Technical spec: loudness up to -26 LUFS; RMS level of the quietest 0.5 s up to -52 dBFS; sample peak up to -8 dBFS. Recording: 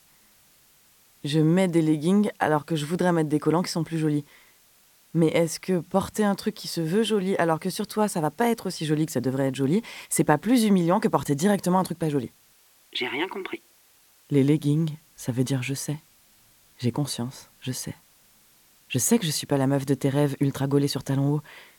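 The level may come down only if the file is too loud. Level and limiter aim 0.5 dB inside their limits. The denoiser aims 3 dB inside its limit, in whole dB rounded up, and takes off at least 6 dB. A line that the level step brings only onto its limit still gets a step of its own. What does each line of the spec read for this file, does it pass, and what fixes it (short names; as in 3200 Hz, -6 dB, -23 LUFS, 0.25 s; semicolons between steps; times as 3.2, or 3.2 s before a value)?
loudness -25.0 LUFS: fail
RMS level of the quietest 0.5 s -59 dBFS: OK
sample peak -5.5 dBFS: fail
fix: gain -1.5 dB; limiter -8.5 dBFS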